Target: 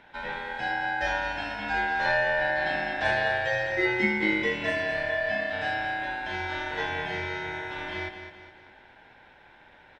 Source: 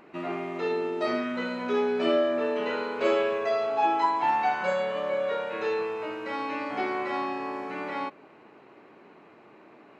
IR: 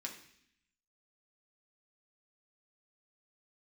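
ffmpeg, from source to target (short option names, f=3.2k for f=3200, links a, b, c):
-af "aecho=1:1:209|418|627|836|1045:0.355|0.156|0.0687|0.0302|0.0133,aeval=exprs='val(0)*sin(2*PI*1200*n/s)':c=same,volume=1dB"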